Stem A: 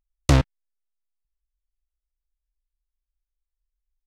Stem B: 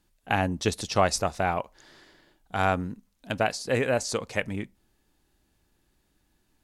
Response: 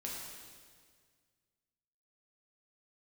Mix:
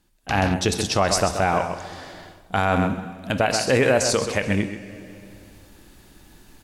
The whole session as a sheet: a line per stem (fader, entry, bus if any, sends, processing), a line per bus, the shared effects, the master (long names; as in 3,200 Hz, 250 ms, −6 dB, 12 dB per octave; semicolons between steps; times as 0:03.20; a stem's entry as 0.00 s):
−9.5 dB, 0.00 s, no send, echo send −10.5 dB, flat-topped bell 2,400 Hz +10 dB 3 octaves; automatic ducking −14 dB, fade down 0.50 s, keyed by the second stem
+2.5 dB, 0.00 s, send −9.5 dB, echo send −9.5 dB, no processing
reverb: on, RT60 1.8 s, pre-delay 5 ms
echo: single-tap delay 130 ms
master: automatic gain control gain up to 15.5 dB; brickwall limiter −8.5 dBFS, peak gain reduction 7.5 dB